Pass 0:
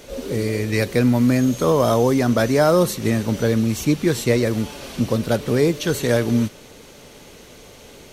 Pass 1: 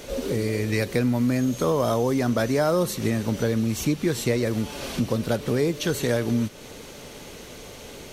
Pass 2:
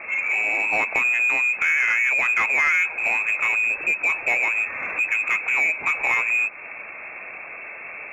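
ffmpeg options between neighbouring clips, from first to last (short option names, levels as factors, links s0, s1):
-af "acompressor=threshold=0.0398:ratio=2,volume=1.33"
-filter_complex "[0:a]lowpass=f=2300:t=q:w=0.5098,lowpass=f=2300:t=q:w=0.6013,lowpass=f=2300:t=q:w=0.9,lowpass=f=2300:t=q:w=2.563,afreqshift=-2700,asplit=2[s0][s1];[s1]highpass=f=720:p=1,volume=5.01,asoftclip=type=tanh:threshold=0.316[s2];[s0][s2]amix=inputs=2:normalize=0,lowpass=f=1000:p=1,volume=0.501,volume=1.68"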